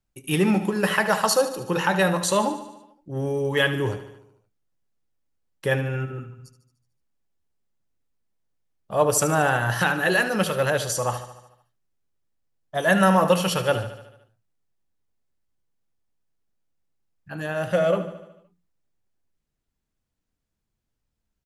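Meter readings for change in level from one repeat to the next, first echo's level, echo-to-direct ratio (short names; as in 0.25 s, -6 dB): -4.5 dB, -12.5 dB, -10.5 dB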